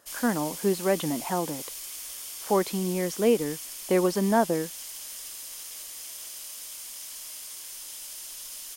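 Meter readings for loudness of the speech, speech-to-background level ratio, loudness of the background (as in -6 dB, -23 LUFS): -27.0 LUFS, 9.5 dB, -36.5 LUFS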